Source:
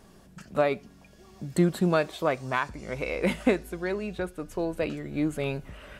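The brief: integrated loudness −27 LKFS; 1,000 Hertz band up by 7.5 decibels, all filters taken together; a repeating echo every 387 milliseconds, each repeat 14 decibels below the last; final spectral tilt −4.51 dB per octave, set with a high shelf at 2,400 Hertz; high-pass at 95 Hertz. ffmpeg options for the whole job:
ffmpeg -i in.wav -af "highpass=95,equalizer=frequency=1000:width_type=o:gain=8.5,highshelf=frequency=2400:gain=5.5,aecho=1:1:387|774:0.2|0.0399,volume=-1dB" out.wav

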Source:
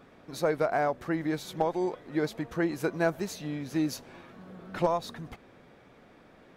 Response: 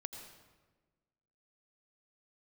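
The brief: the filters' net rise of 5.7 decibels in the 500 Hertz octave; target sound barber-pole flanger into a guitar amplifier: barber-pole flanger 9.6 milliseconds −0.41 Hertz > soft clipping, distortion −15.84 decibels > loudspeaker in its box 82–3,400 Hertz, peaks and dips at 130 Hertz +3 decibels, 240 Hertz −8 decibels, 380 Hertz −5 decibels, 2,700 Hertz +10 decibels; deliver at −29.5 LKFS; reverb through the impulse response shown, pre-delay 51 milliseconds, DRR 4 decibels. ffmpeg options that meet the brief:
-filter_complex "[0:a]equalizer=frequency=500:width_type=o:gain=8.5,asplit=2[link_01][link_02];[1:a]atrim=start_sample=2205,adelay=51[link_03];[link_02][link_03]afir=irnorm=-1:irlink=0,volume=-1.5dB[link_04];[link_01][link_04]amix=inputs=2:normalize=0,asplit=2[link_05][link_06];[link_06]adelay=9.6,afreqshift=-0.41[link_07];[link_05][link_07]amix=inputs=2:normalize=1,asoftclip=threshold=-17.5dB,highpass=82,equalizer=frequency=130:width_type=q:width=4:gain=3,equalizer=frequency=240:width_type=q:width=4:gain=-8,equalizer=frequency=380:width_type=q:width=4:gain=-5,equalizer=frequency=2700:width_type=q:width=4:gain=10,lowpass=frequency=3400:width=0.5412,lowpass=frequency=3400:width=1.3066,volume=0.5dB"

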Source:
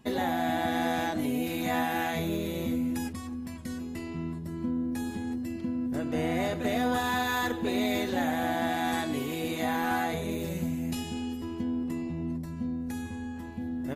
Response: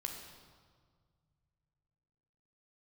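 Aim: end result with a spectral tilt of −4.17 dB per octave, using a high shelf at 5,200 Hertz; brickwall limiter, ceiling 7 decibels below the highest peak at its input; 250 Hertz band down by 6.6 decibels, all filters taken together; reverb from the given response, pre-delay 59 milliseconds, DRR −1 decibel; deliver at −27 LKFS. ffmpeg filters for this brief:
-filter_complex "[0:a]equalizer=frequency=250:width_type=o:gain=-7.5,highshelf=frequency=5200:gain=-5.5,alimiter=level_in=1.5dB:limit=-24dB:level=0:latency=1,volume=-1.5dB,asplit=2[link_01][link_02];[1:a]atrim=start_sample=2205,adelay=59[link_03];[link_02][link_03]afir=irnorm=-1:irlink=0,volume=1.5dB[link_04];[link_01][link_04]amix=inputs=2:normalize=0,volume=6.5dB"

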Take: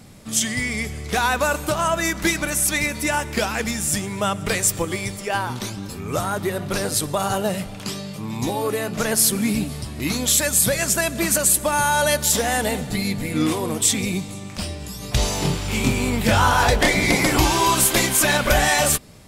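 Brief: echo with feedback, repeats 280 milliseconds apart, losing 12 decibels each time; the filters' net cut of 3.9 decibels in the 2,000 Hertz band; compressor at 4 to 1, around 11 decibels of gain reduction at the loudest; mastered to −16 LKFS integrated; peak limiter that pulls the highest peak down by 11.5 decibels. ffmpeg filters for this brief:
ffmpeg -i in.wav -af "equalizer=frequency=2000:width_type=o:gain=-5,acompressor=threshold=-27dB:ratio=4,alimiter=level_in=1.5dB:limit=-24dB:level=0:latency=1,volume=-1.5dB,aecho=1:1:280|560|840:0.251|0.0628|0.0157,volume=18dB" out.wav

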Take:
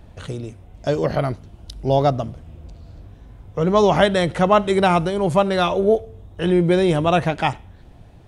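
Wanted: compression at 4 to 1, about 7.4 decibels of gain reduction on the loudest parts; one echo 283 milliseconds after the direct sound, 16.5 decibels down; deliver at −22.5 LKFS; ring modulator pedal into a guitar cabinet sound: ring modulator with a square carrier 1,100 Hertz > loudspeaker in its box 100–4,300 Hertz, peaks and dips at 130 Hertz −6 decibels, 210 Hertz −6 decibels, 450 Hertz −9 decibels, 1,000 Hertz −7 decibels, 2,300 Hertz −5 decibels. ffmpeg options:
ffmpeg -i in.wav -af "acompressor=threshold=-19dB:ratio=4,aecho=1:1:283:0.15,aeval=exprs='val(0)*sgn(sin(2*PI*1100*n/s))':channel_layout=same,highpass=100,equalizer=frequency=130:width_type=q:width=4:gain=-6,equalizer=frequency=210:width_type=q:width=4:gain=-6,equalizer=frequency=450:width_type=q:width=4:gain=-9,equalizer=frequency=1000:width_type=q:width=4:gain=-7,equalizer=frequency=2300:width_type=q:width=4:gain=-5,lowpass=frequency=4300:width=0.5412,lowpass=frequency=4300:width=1.3066,volume=2.5dB" out.wav

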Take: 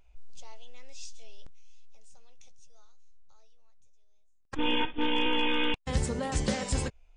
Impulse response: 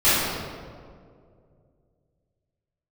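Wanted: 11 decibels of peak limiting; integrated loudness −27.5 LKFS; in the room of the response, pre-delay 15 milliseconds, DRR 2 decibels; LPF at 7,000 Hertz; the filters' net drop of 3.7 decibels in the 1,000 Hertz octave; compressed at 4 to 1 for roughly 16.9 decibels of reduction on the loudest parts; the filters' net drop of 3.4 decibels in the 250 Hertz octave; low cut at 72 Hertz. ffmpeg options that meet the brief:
-filter_complex "[0:a]highpass=72,lowpass=7000,equalizer=frequency=250:width_type=o:gain=-4,equalizer=frequency=1000:width_type=o:gain=-4,acompressor=threshold=-48dB:ratio=4,alimiter=level_in=18dB:limit=-24dB:level=0:latency=1,volume=-18dB,asplit=2[link_01][link_02];[1:a]atrim=start_sample=2205,adelay=15[link_03];[link_02][link_03]afir=irnorm=-1:irlink=0,volume=-23dB[link_04];[link_01][link_04]amix=inputs=2:normalize=0,volume=23dB"

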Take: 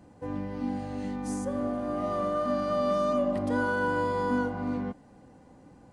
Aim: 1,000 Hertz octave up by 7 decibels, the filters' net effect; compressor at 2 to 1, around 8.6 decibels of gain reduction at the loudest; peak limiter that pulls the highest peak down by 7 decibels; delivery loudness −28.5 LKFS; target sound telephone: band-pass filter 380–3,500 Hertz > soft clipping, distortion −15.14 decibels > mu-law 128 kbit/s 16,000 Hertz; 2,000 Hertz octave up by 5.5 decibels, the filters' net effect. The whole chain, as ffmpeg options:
ffmpeg -i in.wav -af "equalizer=frequency=1000:width_type=o:gain=7,equalizer=frequency=2000:width_type=o:gain=4.5,acompressor=threshold=-36dB:ratio=2,alimiter=level_in=4.5dB:limit=-24dB:level=0:latency=1,volume=-4.5dB,highpass=380,lowpass=3500,asoftclip=threshold=-34.5dB,volume=12dB" -ar 16000 -c:a pcm_mulaw out.wav

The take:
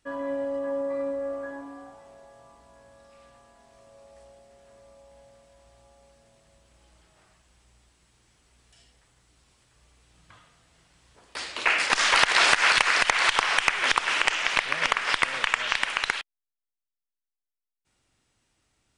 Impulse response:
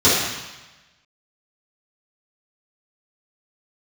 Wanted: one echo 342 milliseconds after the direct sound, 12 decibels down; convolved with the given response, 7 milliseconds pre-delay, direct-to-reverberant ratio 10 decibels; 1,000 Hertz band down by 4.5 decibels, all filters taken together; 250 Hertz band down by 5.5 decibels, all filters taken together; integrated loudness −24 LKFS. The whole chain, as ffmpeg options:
-filter_complex "[0:a]equalizer=frequency=250:width_type=o:gain=-6,equalizer=frequency=1000:width_type=o:gain=-5.5,aecho=1:1:342:0.251,asplit=2[link_01][link_02];[1:a]atrim=start_sample=2205,adelay=7[link_03];[link_02][link_03]afir=irnorm=-1:irlink=0,volume=-33dB[link_04];[link_01][link_04]amix=inputs=2:normalize=0,volume=-0.5dB"

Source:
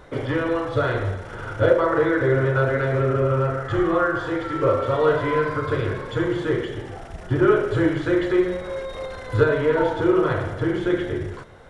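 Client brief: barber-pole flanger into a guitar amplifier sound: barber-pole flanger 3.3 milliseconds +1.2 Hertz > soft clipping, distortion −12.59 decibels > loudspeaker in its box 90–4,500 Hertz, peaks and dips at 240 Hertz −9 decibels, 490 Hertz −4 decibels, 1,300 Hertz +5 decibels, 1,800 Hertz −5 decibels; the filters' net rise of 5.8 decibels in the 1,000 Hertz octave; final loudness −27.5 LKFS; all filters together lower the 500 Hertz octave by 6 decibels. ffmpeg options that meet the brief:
ffmpeg -i in.wav -filter_complex "[0:a]equalizer=frequency=500:width_type=o:gain=-6,equalizer=frequency=1000:width_type=o:gain=6,asplit=2[link_01][link_02];[link_02]adelay=3.3,afreqshift=1.2[link_03];[link_01][link_03]amix=inputs=2:normalize=1,asoftclip=threshold=-21dB,highpass=90,equalizer=frequency=240:width_type=q:width=4:gain=-9,equalizer=frequency=490:width_type=q:width=4:gain=-4,equalizer=frequency=1300:width_type=q:width=4:gain=5,equalizer=frequency=1800:width_type=q:width=4:gain=-5,lowpass=frequency=4500:width=0.5412,lowpass=frequency=4500:width=1.3066,volume=1.5dB" out.wav

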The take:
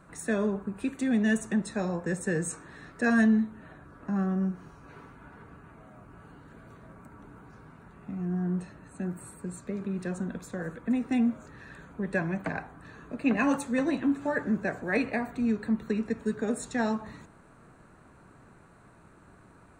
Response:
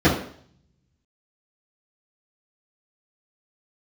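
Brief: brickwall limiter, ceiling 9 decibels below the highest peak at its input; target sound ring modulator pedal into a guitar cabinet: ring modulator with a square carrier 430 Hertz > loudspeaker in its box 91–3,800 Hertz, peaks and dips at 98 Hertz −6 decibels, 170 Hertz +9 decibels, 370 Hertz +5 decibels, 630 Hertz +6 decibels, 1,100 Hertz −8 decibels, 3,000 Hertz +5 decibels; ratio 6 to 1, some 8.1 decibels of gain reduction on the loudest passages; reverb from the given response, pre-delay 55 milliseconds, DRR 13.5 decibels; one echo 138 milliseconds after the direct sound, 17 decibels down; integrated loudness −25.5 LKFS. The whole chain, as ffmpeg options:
-filter_complex "[0:a]acompressor=threshold=-28dB:ratio=6,alimiter=level_in=3.5dB:limit=-24dB:level=0:latency=1,volume=-3.5dB,aecho=1:1:138:0.141,asplit=2[link_01][link_02];[1:a]atrim=start_sample=2205,adelay=55[link_03];[link_02][link_03]afir=irnorm=-1:irlink=0,volume=-34.5dB[link_04];[link_01][link_04]amix=inputs=2:normalize=0,aeval=exprs='val(0)*sgn(sin(2*PI*430*n/s))':channel_layout=same,highpass=91,equalizer=frequency=98:width_type=q:width=4:gain=-6,equalizer=frequency=170:width_type=q:width=4:gain=9,equalizer=frequency=370:width_type=q:width=4:gain=5,equalizer=frequency=630:width_type=q:width=4:gain=6,equalizer=frequency=1100:width_type=q:width=4:gain=-8,equalizer=frequency=3000:width_type=q:width=4:gain=5,lowpass=frequency=3800:width=0.5412,lowpass=frequency=3800:width=1.3066,volume=6.5dB"

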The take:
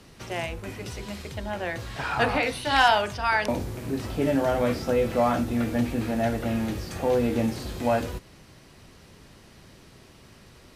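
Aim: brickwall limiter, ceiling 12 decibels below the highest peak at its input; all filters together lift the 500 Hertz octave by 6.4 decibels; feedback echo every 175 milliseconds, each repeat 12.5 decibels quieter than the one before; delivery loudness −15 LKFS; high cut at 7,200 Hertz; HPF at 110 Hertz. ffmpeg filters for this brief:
ffmpeg -i in.wav -af "highpass=110,lowpass=7200,equalizer=frequency=500:width_type=o:gain=7.5,alimiter=limit=-17dB:level=0:latency=1,aecho=1:1:175|350|525:0.237|0.0569|0.0137,volume=12dB" out.wav

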